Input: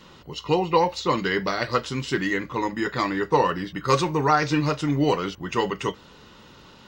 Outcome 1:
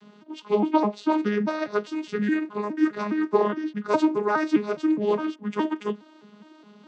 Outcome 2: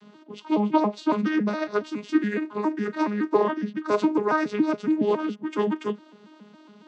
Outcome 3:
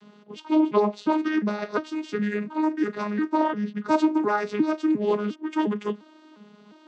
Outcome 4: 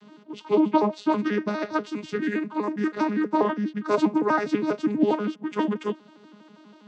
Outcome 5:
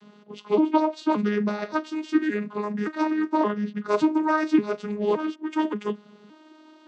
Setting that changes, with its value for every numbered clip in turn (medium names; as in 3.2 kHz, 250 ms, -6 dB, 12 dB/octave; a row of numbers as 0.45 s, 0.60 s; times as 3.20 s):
vocoder on a broken chord, a note every: 207 ms, 139 ms, 353 ms, 81 ms, 572 ms